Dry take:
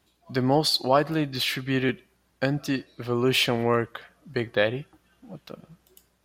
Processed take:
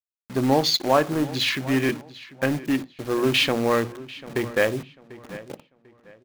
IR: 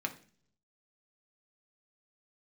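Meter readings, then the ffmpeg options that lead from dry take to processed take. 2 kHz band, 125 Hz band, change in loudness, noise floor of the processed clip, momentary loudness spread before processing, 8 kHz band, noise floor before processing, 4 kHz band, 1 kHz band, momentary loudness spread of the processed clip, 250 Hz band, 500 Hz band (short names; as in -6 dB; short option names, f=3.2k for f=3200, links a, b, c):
+2.5 dB, -0.5 dB, +2.0 dB, -67 dBFS, 14 LU, +3.5 dB, -68 dBFS, +2.0 dB, +1.5 dB, 18 LU, +3.0 dB, +2.0 dB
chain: -filter_complex "[0:a]afwtdn=0.0224,bandreject=f=60:t=h:w=6,bandreject=f=120:t=h:w=6,bandreject=f=180:t=h:w=6,bandreject=f=240:t=h:w=6,asplit=2[a][b];[b]aeval=exprs='(mod(10.6*val(0)+1,2)-1)/10.6':c=same,volume=-12dB[c];[a][c]amix=inputs=2:normalize=0,acrusher=bits=6:mix=0:aa=0.000001,asplit=2[d][e];[e]adelay=744,lowpass=f=4.4k:p=1,volume=-17.5dB,asplit=2[f][g];[g]adelay=744,lowpass=f=4.4k:p=1,volume=0.28,asplit=2[h][i];[i]adelay=744,lowpass=f=4.4k:p=1,volume=0.28[j];[d][f][h][j]amix=inputs=4:normalize=0,asplit=2[k][l];[1:a]atrim=start_sample=2205,afade=t=out:st=0.18:d=0.01,atrim=end_sample=8379[m];[l][m]afir=irnorm=-1:irlink=0,volume=-11.5dB[n];[k][n]amix=inputs=2:normalize=0"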